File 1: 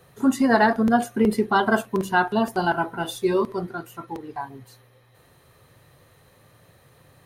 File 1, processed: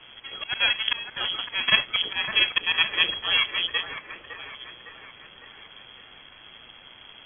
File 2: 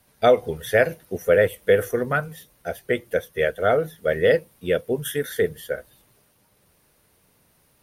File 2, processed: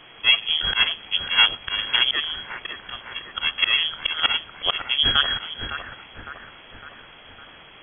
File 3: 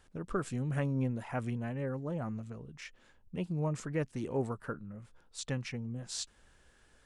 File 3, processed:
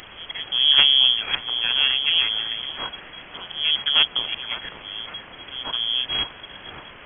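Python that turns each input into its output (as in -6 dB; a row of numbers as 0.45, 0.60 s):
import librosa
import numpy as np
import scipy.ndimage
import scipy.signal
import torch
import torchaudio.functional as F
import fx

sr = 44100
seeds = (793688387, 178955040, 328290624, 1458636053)

p1 = scipy.signal.sosfilt(scipy.signal.ellip(3, 1.0, 40, [170.0, 550.0], 'bandstop', fs=sr, output='sos'), x)
p2 = fx.auto_swell(p1, sr, attack_ms=342.0)
p3 = np.maximum(p2, 0.0)
p4 = fx.quant_dither(p3, sr, seeds[0], bits=8, dither='triangular')
p5 = p3 + (p4 * 10.0 ** (-4.0 / 20.0))
p6 = fx.echo_wet_highpass(p5, sr, ms=558, feedback_pct=54, hz=1400.0, wet_db=-7)
p7 = fx.freq_invert(p6, sr, carrier_hz=3300)
y = p7 * 10.0 ** (-3 / 20.0) / np.max(np.abs(p7))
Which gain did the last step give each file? +5.0, +11.5, +16.0 dB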